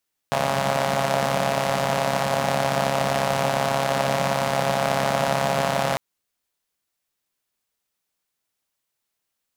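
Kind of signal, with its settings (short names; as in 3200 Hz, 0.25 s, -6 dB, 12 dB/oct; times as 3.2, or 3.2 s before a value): four-cylinder engine model, steady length 5.65 s, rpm 4100, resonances 190/620 Hz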